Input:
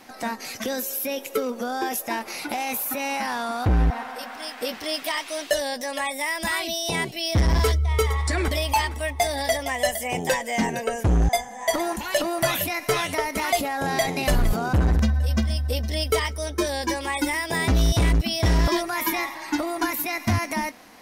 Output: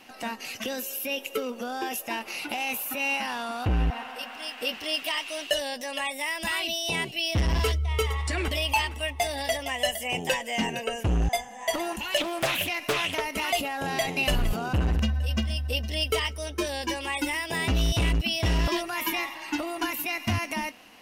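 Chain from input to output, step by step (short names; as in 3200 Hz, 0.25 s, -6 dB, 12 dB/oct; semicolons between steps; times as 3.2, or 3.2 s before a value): bell 2800 Hz +15 dB 0.26 oct; 12.17–13.21 Doppler distortion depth 0.57 ms; gain -5 dB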